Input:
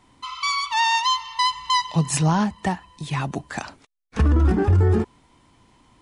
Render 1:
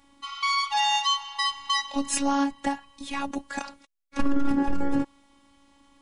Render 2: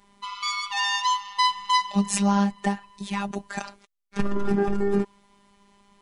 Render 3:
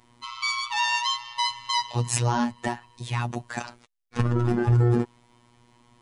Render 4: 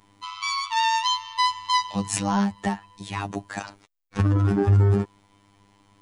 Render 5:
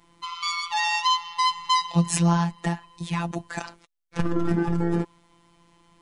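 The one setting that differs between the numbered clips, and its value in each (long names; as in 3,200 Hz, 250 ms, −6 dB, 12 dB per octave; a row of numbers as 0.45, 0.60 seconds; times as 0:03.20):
phases set to zero, frequency: 280, 200, 120, 100, 170 Hertz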